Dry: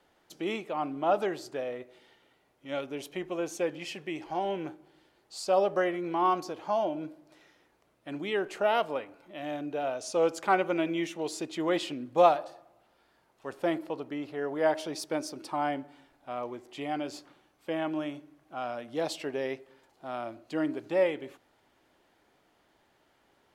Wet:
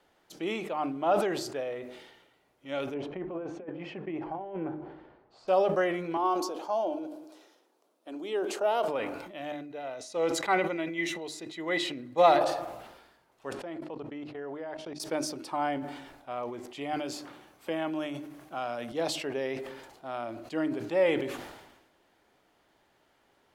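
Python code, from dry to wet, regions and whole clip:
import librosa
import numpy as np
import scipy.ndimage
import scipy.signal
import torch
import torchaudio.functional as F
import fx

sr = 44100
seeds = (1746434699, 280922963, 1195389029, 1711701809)

y = fx.chain(x, sr, fx.lowpass(hz=1300.0, slope=12),
    fx.over_compress(threshold_db=-35.0, ratio=-0.5), at=(2.94, 5.48))
y = fx.chain(y, sr, fx.highpass(hz=260.0, slope=24),
    fx.peak_eq(hz=2000.0, db=-11.0, octaves=1.1),
    fx.echo_single(ms=203, db=-21.5), at=(6.17, 8.88))
y = fx.chain(y, sr, fx.small_body(hz=(2000.0, 3900.0), ring_ms=40, db=17),
    fx.upward_expand(threshold_db=-34.0, expansion=1.5), at=(9.52, 12.41))
y = fx.chain(y, sr, fx.lowpass(hz=10000.0, slope=12),
    fx.high_shelf(hz=5600.0, db=-10.0),
    fx.level_steps(step_db=19), at=(13.53, 15.0))
y = fx.chain(y, sr, fx.highpass(hz=53.0, slope=12),
    fx.high_shelf(hz=6700.0, db=5.5),
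    fx.band_squash(depth_pct=40), at=(16.93, 18.92))
y = fx.hum_notches(y, sr, base_hz=50, count=7)
y = fx.sustainer(y, sr, db_per_s=53.0)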